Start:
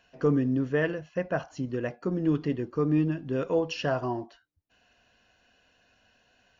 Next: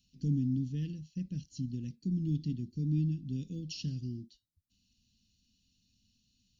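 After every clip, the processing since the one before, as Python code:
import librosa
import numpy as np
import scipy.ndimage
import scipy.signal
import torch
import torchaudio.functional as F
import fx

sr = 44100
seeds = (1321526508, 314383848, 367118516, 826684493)

y = scipy.signal.sosfilt(scipy.signal.ellip(3, 1.0, 80, [220.0, 4000.0], 'bandstop', fs=sr, output='sos'), x)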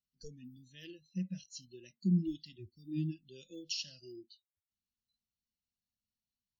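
y = fx.noise_reduce_blind(x, sr, reduce_db=30)
y = y * librosa.db_to_amplitude(5.0)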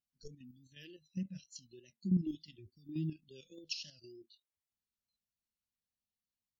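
y = fx.level_steps(x, sr, step_db=9)
y = fx.vibrato(y, sr, rate_hz=3.4, depth_cents=54.0)
y = y * librosa.db_to_amplitude(1.0)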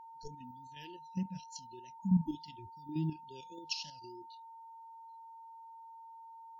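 y = x + 10.0 ** (-52.0 / 20.0) * np.sin(2.0 * np.pi * 910.0 * np.arange(len(x)) / sr)
y = fx.spec_repair(y, sr, seeds[0], start_s=2.02, length_s=0.24, low_hz=260.0, high_hz=5900.0, source='before')
y = y * librosa.db_to_amplitude(2.5)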